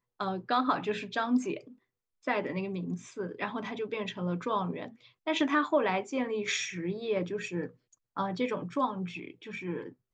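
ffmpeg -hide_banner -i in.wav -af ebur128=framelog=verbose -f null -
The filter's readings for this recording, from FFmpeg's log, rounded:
Integrated loudness:
  I:         -32.6 LUFS
  Threshold: -42.8 LUFS
Loudness range:
  LRA:         3.6 LU
  Threshold: -52.8 LUFS
  LRA low:   -34.9 LUFS
  LRA high:  -31.2 LUFS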